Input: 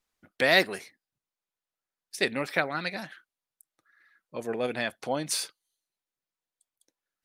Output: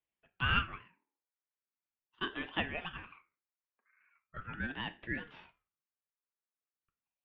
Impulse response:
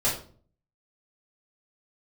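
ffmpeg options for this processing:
-filter_complex "[0:a]highpass=f=420:t=q:w=0.5412,highpass=f=420:t=q:w=1.307,lowpass=f=2.1k:t=q:w=0.5176,lowpass=f=2.1k:t=q:w=0.7071,lowpass=f=2.1k:t=q:w=1.932,afreqshift=170,asplit=2[a][b];[1:a]atrim=start_sample=2205[c];[b][c]afir=irnorm=-1:irlink=0,volume=-21dB[d];[a][d]amix=inputs=2:normalize=0,aeval=exprs='val(0)*sin(2*PI*640*n/s+640*0.6/0.4*sin(2*PI*0.4*n/s))':c=same,volume=-5dB"

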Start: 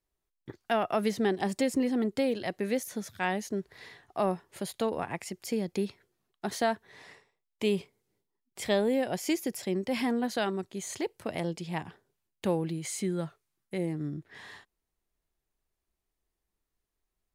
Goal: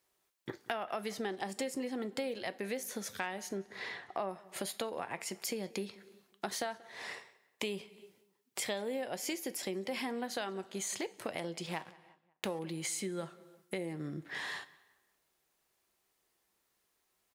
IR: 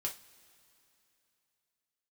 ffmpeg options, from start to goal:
-filter_complex "[0:a]asettb=1/sr,asplit=3[a][b][c];[a]atrim=end=3.574[d];[b]atrim=start=3.57:end=4.29,asetpts=PTS-STARTPTS,afade=t=in:d=0.004:c=qsin,afade=t=out:st=0.716:d=0.004:c=qsin,aemphasis=mode=reproduction:type=50fm[e];[c]atrim=start=4.286[f];[d][e]acrossfade=d=0.004:c1=hsin:c2=qsin[g];[g][f]acrossfade=d=0.004:c1=qsin:c2=hsin,asettb=1/sr,asplit=3[h][i][j];[h]atrim=end=11.664[k];[i]atrim=start=11.66:end=12.59,asetpts=PTS-STARTPTS,afade=t=in:d=0.004:c=qsin,afade=t=out:st=0.926:d=0.004:c=qsin,aeval=exprs='sgn(val(0))*max(abs(val(0))-0.00531,0)':c=same[l];[j]atrim=start=12.586[m];[k][l]acrossfade=d=0.004:c1=hsin:c2=qsin[n];[n][m]acrossfade=d=0.004:c1=qsin:c2=hsin,highpass=f=510:p=1,asplit=2[o][p];[1:a]atrim=start_sample=2205,afade=t=out:st=0.4:d=0.01,atrim=end_sample=18081[q];[p][q]afir=irnorm=-1:irlink=0,volume=-8dB[r];[o][r]amix=inputs=2:normalize=0,acompressor=threshold=-45dB:ratio=5,asplit=2[s][t];[t]adelay=183,lowpass=f=3.1k:p=1,volume=-21.5dB,asplit=2[u][v];[v]adelay=183,lowpass=f=3.1k:p=1,volume=0.45,asplit=2[w][x];[x]adelay=183,lowpass=f=3.1k:p=1,volume=0.45[y];[s][u][w][y]amix=inputs=4:normalize=0,volume=8.5dB"

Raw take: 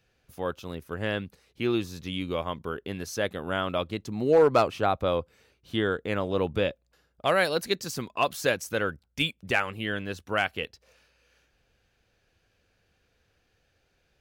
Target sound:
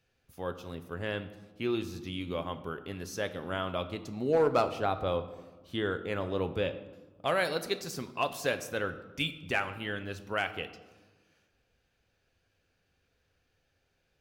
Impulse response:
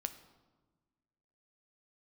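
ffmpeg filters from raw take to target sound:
-filter_complex "[1:a]atrim=start_sample=2205[a];[0:a][a]afir=irnorm=-1:irlink=0,volume=-4dB"

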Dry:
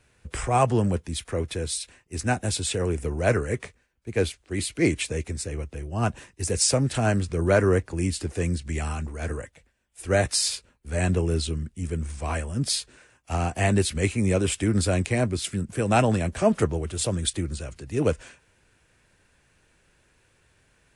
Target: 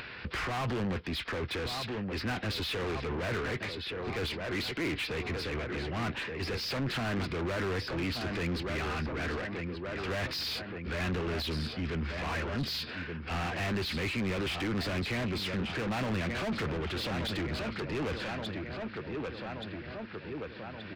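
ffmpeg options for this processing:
-filter_complex "[0:a]asplit=2[a][b];[b]adelay=1176,lowpass=f=3.2k:p=1,volume=-14dB,asplit=2[c][d];[d]adelay=1176,lowpass=f=3.2k:p=1,volume=0.49,asplit=2[e][f];[f]adelay=1176,lowpass=f=3.2k:p=1,volume=0.49,asplit=2[g][h];[h]adelay=1176,lowpass=f=3.2k:p=1,volume=0.49,asplit=2[i][j];[j]adelay=1176,lowpass=f=3.2k:p=1,volume=0.49[k];[a][c][e][g][i][k]amix=inputs=6:normalize=0,aresample=11025,asoftclip=type=tanh:threshold=-18.5dB,aresample=44100,asplit=2[l][m];[m]highpass=f=720:p=1,volume=31dB,asoftclip=type=tanh:threshold=-16.5dB[n];[l][n]amix=inputs=2:normalize=0,lowpass=f=2.1k:p=1,volume=-6dB,acompressor=mode=upward:threshold=-26dB:ratio=2.5,equalizer=f=630:t=o:w=1.6:g=-8,volume=-6.5dB"

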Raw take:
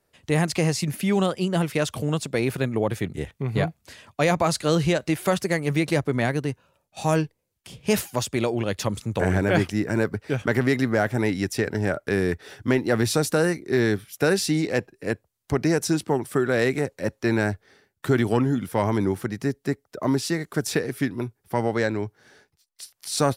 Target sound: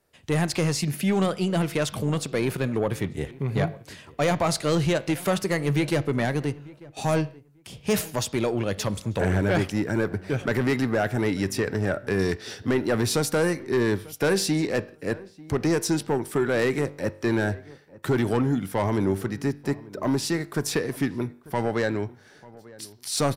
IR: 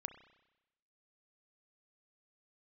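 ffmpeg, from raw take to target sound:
-filter_complex "[0:a]asettb=1/sr,asplit=3[a][b][c];[a]atrim=end=12.194[d];[b]atrim=start=12.19:end=12.63,asetpts=PTS-STARTPTS,afade=t=in:d=0.004:c=qsin,afade=t=out:st=0.436:d=0.004:c=qsin,equalizer=f=5.1k:t=o:w=1.4:g=11[e];[c]atrim=start=12.626[f];[d][e]acrossfade=d=0.004:c1=hsin:c2=qsin[g];[g][f]acrossfade=d=0.004:c1=qsin:c2=hsin,asoftclip=type=tanh:threshold=-16dB,asplit=2[h][i];[i]adelay=893,lowpass=f=1.5k:p=1,volume=-20.5dB,asplit=2[j][k];[k]adelay=893,lowpass=f=1.5k:p=1,volume=0.2[l];[h][j][l]amix=inputs=3:normalize=0,asplit=2[m][n];[1:a]atrim=start_sample=2205,afade=t=out:st=0.33:d=0.01,atrim=end_sample=14994,asetrate=66150,aresample=44100[o];[n][o]afir=irnorm=-1:irlink=0,volume=4.5dB[p];[m][p]amix=inputs=2:normalize=0,volume=-4dB"

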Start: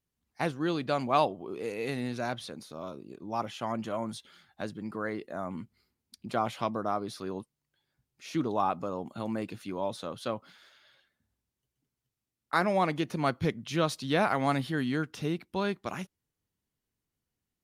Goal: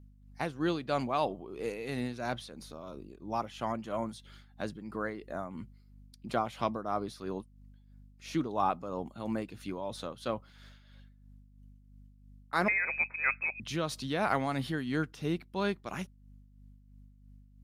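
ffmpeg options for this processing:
-filter_complex "[0:a]asettb=1/sr,asplit=3[a][b][c];[a]atrim=end=12.684[d];[b]atrim=start=12.68:end=13.6,asetpts=PTS-STARTPTS,afade=t=in:d=0.004:c=qsin,afade=t=out:st=0.916:d=0.004:c=qsin,lowpass=f=2.3k:t=q:w=0.5098,lowpass=f=2.3k:t=q:w=0.6013,lowpass=f=2.3k:t=q:w=0.9,lowpass=f=2.3k:t=q:w=2.563,afreqshift=-2700[e];[c]atrim=start=13.596[f];[d][e]acrossfade=d=0.004:c1=hsin:c2=qsin[g];[g][f]acrossfade=d=0.004:c1=qsin:c2=hsin,aeval=exprs='val(0)+0.00251*(sin(2*PI*50*n/s)+sin(2*PI*2*50*n/s)/2+sin(2*PI*3*50*n/s)/3+sin(2*PI*4*50*n/s)/4+sin(2*PI*5*50*n/s)/5)':c=same,tremolo=f=3:d=0.53"

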